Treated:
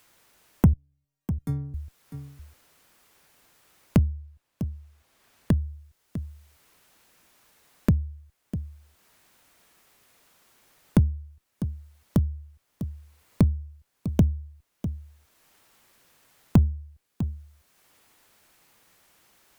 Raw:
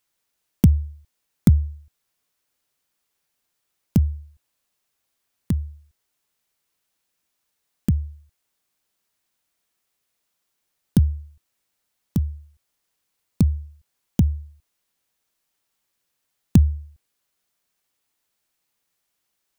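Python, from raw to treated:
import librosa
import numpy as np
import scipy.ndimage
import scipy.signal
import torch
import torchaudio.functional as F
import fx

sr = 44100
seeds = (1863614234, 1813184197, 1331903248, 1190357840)

p1 = fx.high_shelf(x, sr, hz=5700.0, db=-6.0, at=(4.04, 5.51))
p2 = 10.0 ** (-17.0 / 20.0) * np.tanh(p1 / 10.0 ** (-17.0 / 20.0))
p3 = p1 + (p2 * librosa.db_to_amplitude(-3.0))
p4 = fx.stiff_resonator(p3, sr, f0_hz=140.0, decay_s=0.69, stiffness=0.008, at=(0.73, 1.74))
p5 = fx.cheby_harmonics(p4, sr, harmonics=(7,), levels_db=(-23,), full_scale_db=-1.0)
p6 = p5 + fx.echo_single(p5, sr, ms=650, db=-22.0, dry=0)
y = fx.band_squash(p6, sr, depth_pct=70)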